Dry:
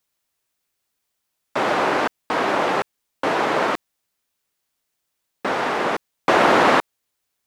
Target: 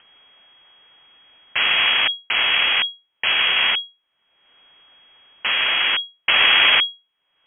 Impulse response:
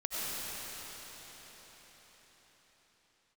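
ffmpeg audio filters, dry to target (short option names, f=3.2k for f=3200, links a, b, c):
-filter_complex "[0:a]asplit=2[a][b];[b]alimiter=limit=-12dB:level=0:latency=1:release=190,volume=-2dB[c];[a][c]amix=inputs=2:normalize=0,acompressor=mode=upward:threshold=-26dB:ratio=2.5,aeval=exprs='max(val(0),0)':c=same,lowpass=f=2.8k:t=q:w=0.5098,lowpass=f=2.8k:t=q:w=0.6013,lowpass=f=2.8k:t=q:w=0.9,lowpass=f=2.8k:t=q:w=2.563,afreqshift=-3300,volume=1dB"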